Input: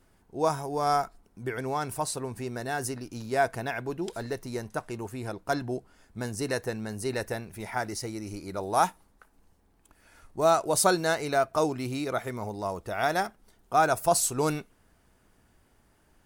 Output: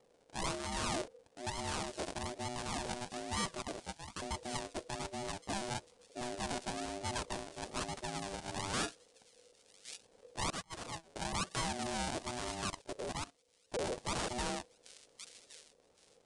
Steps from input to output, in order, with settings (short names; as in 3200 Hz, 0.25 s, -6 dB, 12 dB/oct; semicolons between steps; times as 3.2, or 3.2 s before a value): Wiener smoothing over 25 samples; 3.62–4.22 HPF 500 Hz 24 dB/oct; decimation with a swept rate 41×, swing 100% 1.1 Hz; wrapped overs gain 12.5 dB; thin delay 1.115 s, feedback 30%, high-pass 3100 Hz, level -18 dB; hard clip -30.5 dBFS, distortion -4 dB; elliptic low-pass 9400 Hz, stop band 40 dB; 12.7–13.74 level quantiser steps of 18 dB; high shelf 3300 Hz +11 dB; 10.5–11.16 gate -30 dBFS, range -27 dB; ring modulator 490 Hz; gain -1 dB